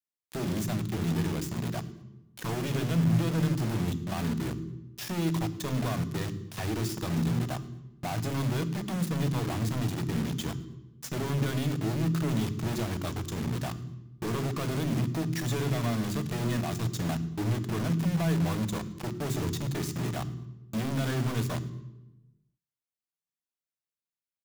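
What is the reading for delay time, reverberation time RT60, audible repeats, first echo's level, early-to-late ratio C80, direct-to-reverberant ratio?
110 ms, 1.1 s, 1, −23.5 dB, 15.5 dB, 11.0 dB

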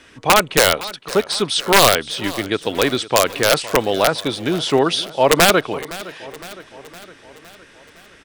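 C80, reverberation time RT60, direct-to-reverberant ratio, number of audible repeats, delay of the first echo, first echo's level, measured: no reverb audible, no reverb audible, no reverb audible, 4, 512 ms, −18.0 dB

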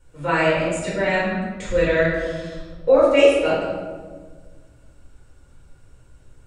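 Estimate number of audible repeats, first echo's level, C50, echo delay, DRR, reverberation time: no echo audible, no echo audible, 0.5 dB, no echo audible, −9.0 dB, 1.5 s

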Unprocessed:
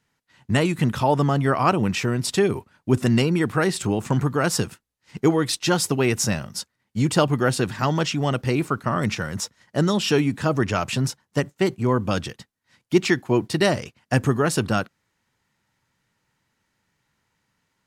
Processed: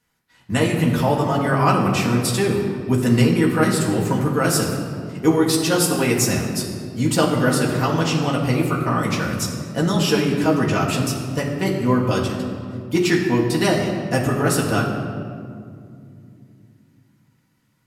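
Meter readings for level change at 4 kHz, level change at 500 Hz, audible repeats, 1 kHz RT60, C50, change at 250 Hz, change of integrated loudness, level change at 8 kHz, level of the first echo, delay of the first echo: +2.0 dB, +2.0 dB, no echo audible, 2.0 s, 4.0 dB, +4.0 dB, +2.5 dB, +4.0 dB, no echo audible, no echo audible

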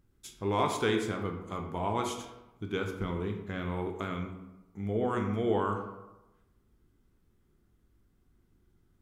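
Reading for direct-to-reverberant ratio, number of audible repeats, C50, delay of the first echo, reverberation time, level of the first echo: 3.0 dB, no echo audible, 6.0 dB, no echo audible, 1.0 s, no echo audible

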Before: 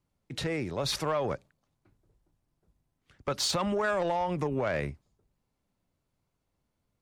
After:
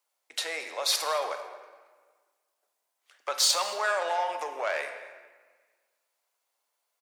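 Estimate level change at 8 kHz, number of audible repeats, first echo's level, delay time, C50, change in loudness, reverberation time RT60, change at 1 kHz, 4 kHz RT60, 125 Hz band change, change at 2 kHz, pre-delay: +8.5 dB, 1, −20.5 dB, 222 ms, 7.5 dB, +2.5 dB, 1.5 s, +3.0 dB, 1.0 s, below −40 dB, +4.0 dB, 7 ms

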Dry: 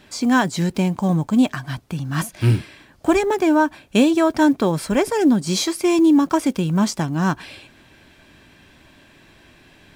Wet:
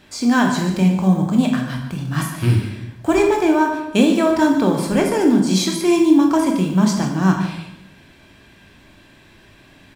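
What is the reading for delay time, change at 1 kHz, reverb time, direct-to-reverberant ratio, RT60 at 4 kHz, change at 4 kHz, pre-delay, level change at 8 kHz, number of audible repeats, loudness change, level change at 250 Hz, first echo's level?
146 ms, +1.5 dB, 0.85 s, 1.5 dB, 0.60 s, +1.0 dB, 17 ms, +1.0 dB, 1, +2.0 dB, +2.0 dB, −12.5 dB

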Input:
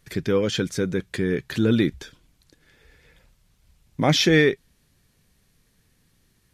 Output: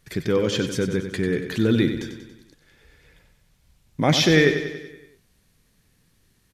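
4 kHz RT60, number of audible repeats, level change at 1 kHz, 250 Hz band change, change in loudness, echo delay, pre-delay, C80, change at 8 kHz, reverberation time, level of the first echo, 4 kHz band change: no reverb audible, 6, +0.5 dB, +0.5 dB, +0.5 dB, 94 ms, no reverb audible, no reverb audible, +1.0 dB, no reverb audible, −9.0 dB, +0.5 dB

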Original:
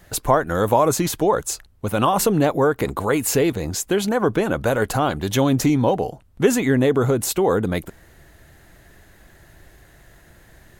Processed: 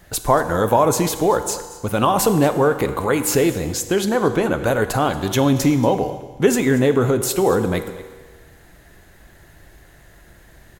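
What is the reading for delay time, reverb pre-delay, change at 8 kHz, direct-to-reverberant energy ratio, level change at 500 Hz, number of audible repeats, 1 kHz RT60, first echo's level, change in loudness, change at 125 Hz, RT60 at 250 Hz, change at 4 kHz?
232 ms, 8 ms, +1.5 dB, 8.5 dB, +1.5 dB, 1, 1.5 s, −18.0 dB, +1.5 dB, +1.0 dB, 1.4 s, +1.5 dB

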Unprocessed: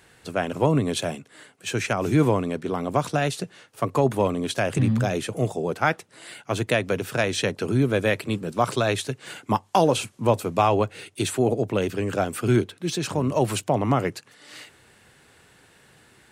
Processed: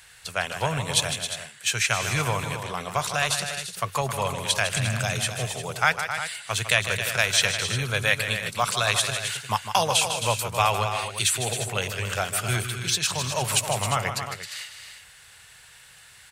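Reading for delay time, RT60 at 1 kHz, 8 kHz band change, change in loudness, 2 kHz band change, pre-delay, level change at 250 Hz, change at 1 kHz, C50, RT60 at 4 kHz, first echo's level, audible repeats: 154 ms, no reverb audible, +9.5 dB, −0.5 dB, +5.5 dB, no reverb audible, −13.0 dB, −0.5 dB, no reverb audible, no reverb audible, −9.5 dB, 3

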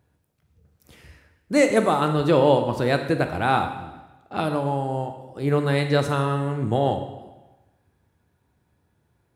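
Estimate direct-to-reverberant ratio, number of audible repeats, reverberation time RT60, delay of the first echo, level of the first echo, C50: 6.0 dB, no echo audible, 1.1 s, no echo audible, no echo audible, 8.0 dB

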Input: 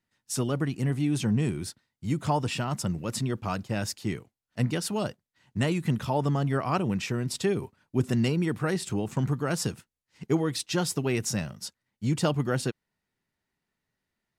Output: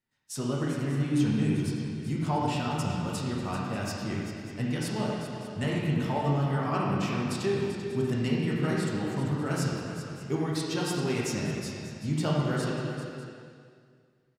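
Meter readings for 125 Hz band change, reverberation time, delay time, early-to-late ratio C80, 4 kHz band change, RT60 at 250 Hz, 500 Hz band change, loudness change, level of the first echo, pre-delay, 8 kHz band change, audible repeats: −1.0 dB, 2.2 s, 390 ms, 0.0 dB, −2.0 dB, 2.1 s, −1.0 dB, −1.0 dB, −10.0 dB, 5 ms, −5.0 dB, 2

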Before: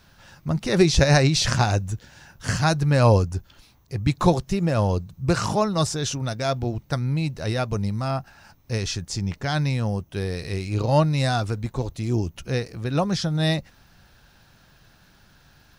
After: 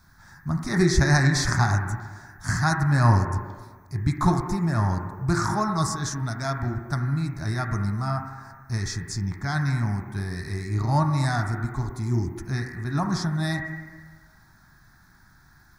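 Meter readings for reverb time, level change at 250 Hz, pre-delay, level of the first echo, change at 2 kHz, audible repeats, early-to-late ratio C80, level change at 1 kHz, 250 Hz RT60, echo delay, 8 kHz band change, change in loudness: 1.4 s, −1.5 dB, 18 ms, no echo audible, +1.0 dB, no echo audible, 5.0 dB, −0.5 dB, 1.3 s, no echo audible, −2.5 dB, −2.0 dB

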